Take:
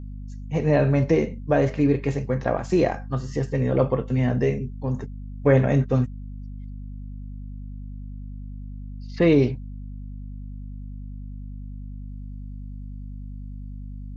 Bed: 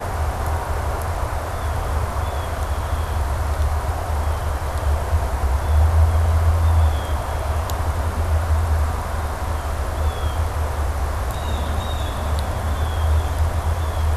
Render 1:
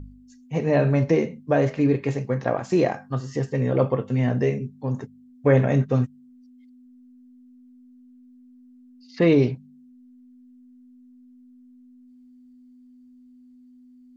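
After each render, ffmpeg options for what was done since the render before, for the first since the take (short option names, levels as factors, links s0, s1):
-af "bandreject=f=50:t=h:w=4,bandreject=f=100:t=h:w=4,bandreject=f=150:t=h:w=4,bandreject=f=200:t=h:w=4"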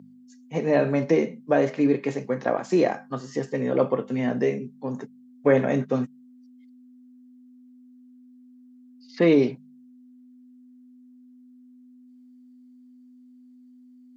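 -af "highpass=f=180:w=0.5412,highpass=f=180:w=1.3066,bandreject=f=2700:w=29"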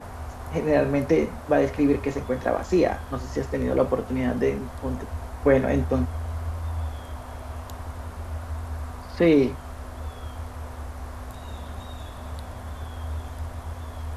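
-filter_complex "[1:a]volume=0.211[s0];[0:a][s0]amix=inputs=2:normalize=0"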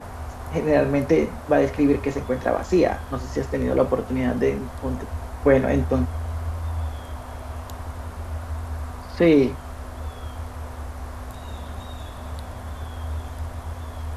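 -af "volume=1.26"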